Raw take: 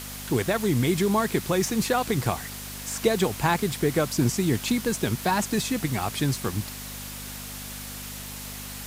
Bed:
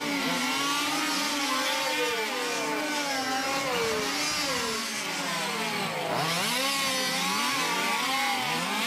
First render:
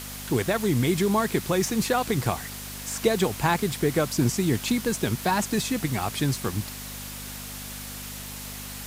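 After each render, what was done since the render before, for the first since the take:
no processing that can be heard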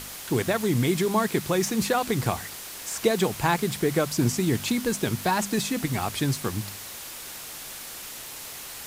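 hum removal 50 Hz, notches 5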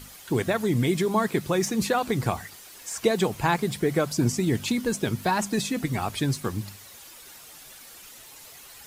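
broadband denoise 10 dB, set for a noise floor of −39 dBFS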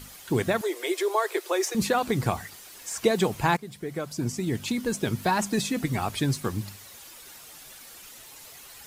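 0:00.61–0:01.75: Butterworth high-pass 350 Hz 72 dB per octave
0:03.57–0:05.23: fade in, from −15.5 dB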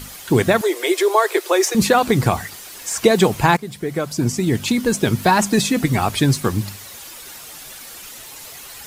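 level +9.5 dB
brickwall limiter −2 dBFS, peak gain reduction 2 dB

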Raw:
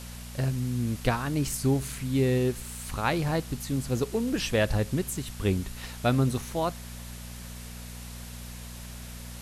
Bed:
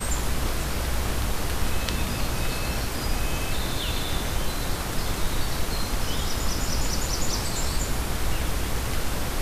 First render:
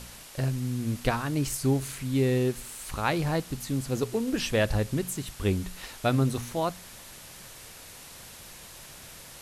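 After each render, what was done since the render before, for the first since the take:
hum removal 60 Hz, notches 4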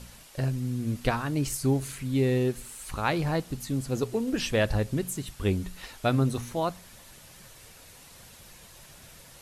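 broadband denoise 6 dB, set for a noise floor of −47 dBFS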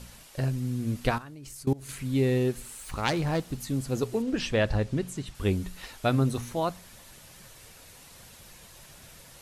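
0:01.18–0:01.89: output level in coarse steps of 22 dB
0:02.80–0:03.59: phase distortion by the signal itself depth 0.17 ms
0:04.22–0:05.35: high-frequency loss of the air 58 metres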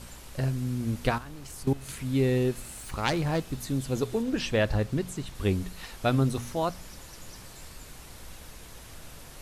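mix in bed −21 dB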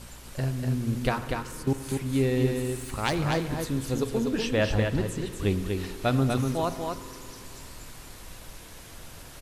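on a send: single-tap delay 243 ms −4.5 dB
on the sum: spring reverb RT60 3.1 s, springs 48 ms, chirp 30 ms, DRR 11 dB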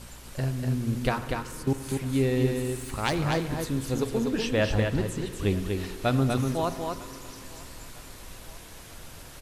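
feedback echo with a high-pass in the loop 950 ms, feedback 65%, level −22 dB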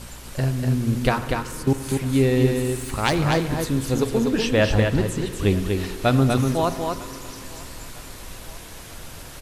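level +6 dB

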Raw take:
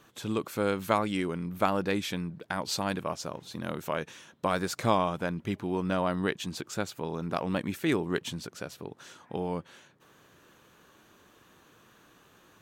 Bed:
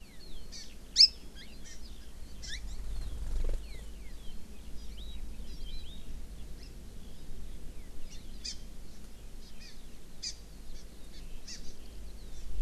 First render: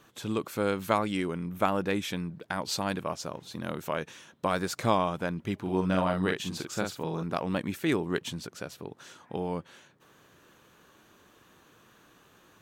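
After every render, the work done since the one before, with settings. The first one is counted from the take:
0:01.31–0:02.08: parametric band 4,500 Hz −9 dB 0.21 octaves
0:05.61–0:07.23: double-tracking delay 43 ms −4 dB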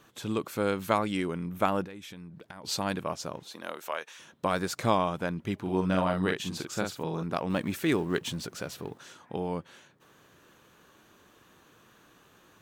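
0:01.84–0:02.64: downward compressor 4 to 1, threshold −43 dBFS
0:03.43–0:04.18: high-pass filter 340 Hz → 830 Hz
0:07.50–0:08.98: mu-law and A-law mismatch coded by mu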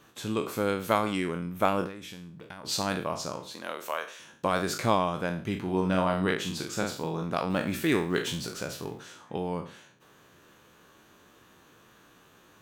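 peak hold with a decay on every bin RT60 0.43 s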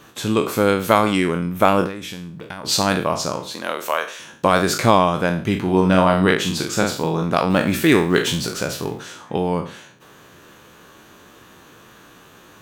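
level +11 dB
brickwall limiter −1 dBFS, peak gain reduction 2 dB

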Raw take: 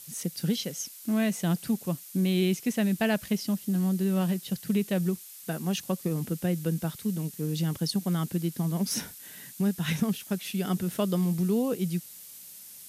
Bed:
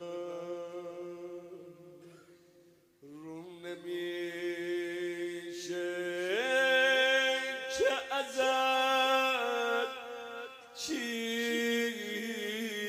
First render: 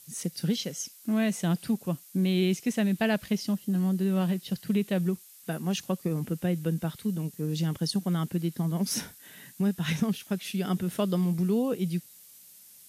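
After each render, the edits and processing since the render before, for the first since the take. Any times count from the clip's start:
noise reduction from a noise print 6 dB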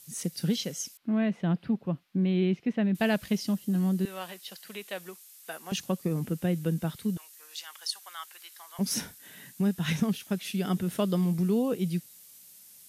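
0:00.97–0:02.95: high-frequency loss of the air 380 metres
0:04.05–0:05.72: high-pass filter 720 Hz
0:07.17–0:08.79: high-pass filter 990 Hz 24 dB per octave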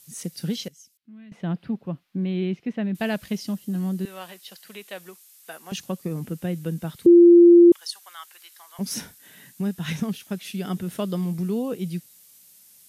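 0:00.68–0:01.32: guitar amp tone stack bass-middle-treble 6-0-2
0:07.06–0:07.72: beep over 345 Hz −7.5 dBFS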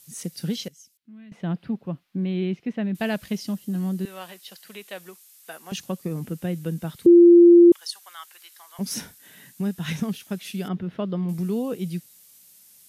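0:10.68–0:11.29: high-frequency loss of the air 310 metres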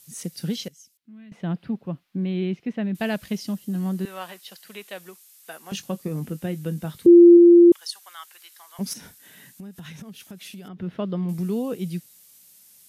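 0:03.85–0:04.88: dynamic equaliser 1,100 Hz, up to +5 dB, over −48 dBFS, Q 0.73
0:05.62–0:07.37: double-tracking delay 20 ms −12 dB
0:08.93–0:10.79: downward compressor 12 to 1, threshold −36 dBFS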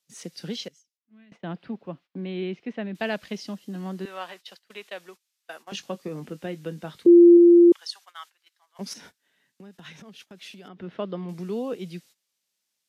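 noise gate −44 dBFS, range −18 dB
three-way crossover with the lows and the highs turned down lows −12 dB, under 270 Hz, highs −16 dB, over 6,400 Hz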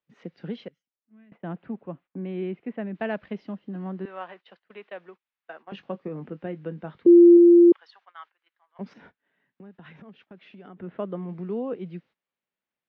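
Bessel low-pass filter 1,700 Hz, order 4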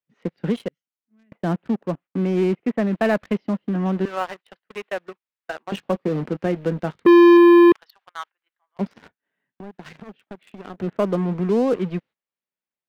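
leveller curve on the samples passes 3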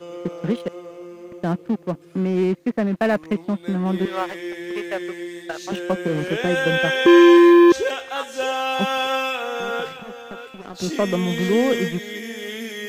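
mix in bed +5.5 dB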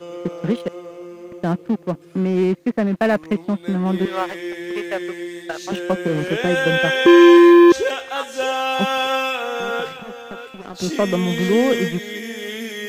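level +2 dB
brickwall limiter −3 dBFS, peak gain reduction 1 dB

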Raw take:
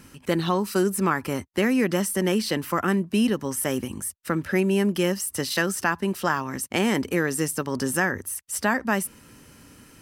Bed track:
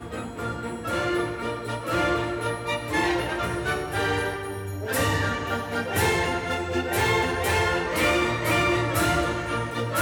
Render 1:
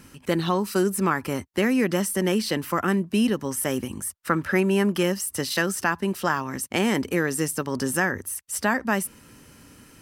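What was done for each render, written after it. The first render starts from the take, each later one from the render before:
0:04.07–0:05.03: parametric band 1,200 Hz +7 dB 1.2 octaves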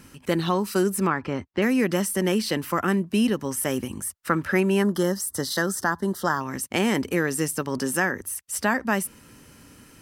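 0:01.07–0:01.62: high-frequency loss of the air 170 metres
0:04.82–0:06.41: Butterworth band-reject 2,500 Hz, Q 1.7
0:07.78–0:08.21: high-pass filter 150 Hz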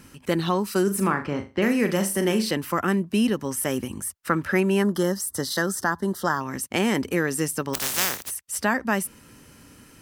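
0:00.83–0:02.51: flutter between parallel walls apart 7 metres, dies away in 0.29 s
0:07.73–0:08.29: compressing power law on the bin magnitudes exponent 0.15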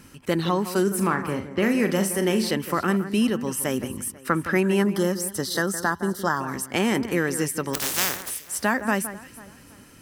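delay that swaps between a low-pass and a high-pass 164 ms, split 2,100 Hz, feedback 56%, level −12 dB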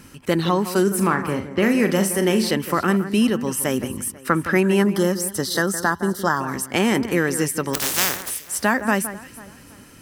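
level +3.5 dB

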